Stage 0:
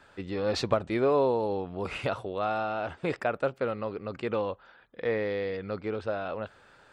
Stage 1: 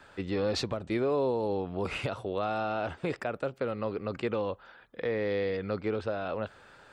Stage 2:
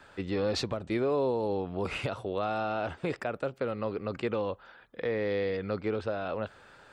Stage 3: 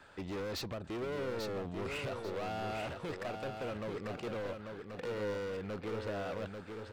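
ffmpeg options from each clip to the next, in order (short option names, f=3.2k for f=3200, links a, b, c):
-filter_complex "[0:a]acrossover=split=470|3000[a][b][c];[b]acompressor=threshold=-39dB:ratio=1.5[d];[a][d][c]amix=inputs=3:normalize=0,alimiter=limit=-23.5dB:level=0:latency=1:release=254,volume=2.5dB"
-af anull
-af "volume=33.5dB,asoftclip=hard,volume=-33.5dB,aecho=1:1:841|1682|2523|3364:0.531|0.165|0.051|0.0158,volume=-3.5dB"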